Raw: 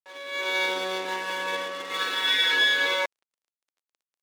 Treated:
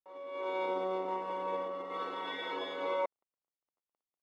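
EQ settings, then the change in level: polynomial smoothing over 65 samples; -2.5 dB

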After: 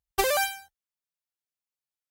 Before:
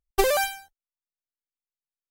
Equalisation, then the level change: HPF 47 Hz; bell 340 Hz -7 dB 1.4 oct; 0.0 dB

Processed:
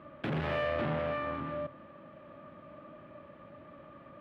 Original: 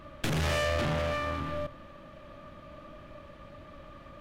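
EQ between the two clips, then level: HPF 150 Hz 12 dB/oct; air absorption 480 m; 0.0 dB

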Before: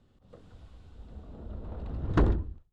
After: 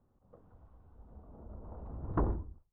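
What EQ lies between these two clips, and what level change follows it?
synth low-pass 1000 Hz, resonance Q 1.9; -8.0 dB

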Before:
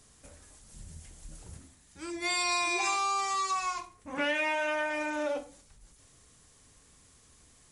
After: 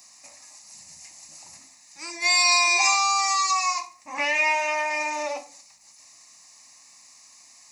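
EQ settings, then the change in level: HPF 450 Hz 12 dB/oct; high shelf 4000 Hz +10 dB; fixed phaser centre 2200 Hz, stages 8; +8.5 dB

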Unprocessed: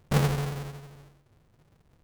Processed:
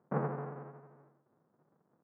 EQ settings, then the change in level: HPF 180 Hz 24 dB/oct; inverse Chebyshev low-pass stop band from 3600 Hz, stop band 50 dB; -5.0 dB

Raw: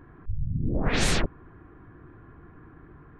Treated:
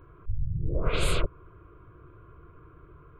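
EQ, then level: dynamic EQ 3100 Hz, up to -3 dB, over -40 dBFS, Q 0.9; fixed phaser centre 1200 Hz, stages 8; +1.0 dB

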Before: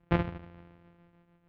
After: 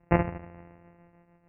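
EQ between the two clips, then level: rippled Chebyshev low-pass 2800 Hz, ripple 6 dB; air absorption 150 m; +8.5 dB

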